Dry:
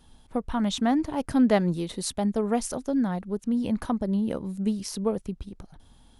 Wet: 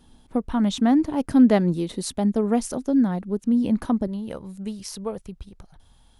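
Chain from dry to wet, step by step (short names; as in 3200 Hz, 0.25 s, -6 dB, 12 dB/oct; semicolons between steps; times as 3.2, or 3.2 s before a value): bell 270 Hz +6 dB 1.4 oct, from 4.07 s -7 dB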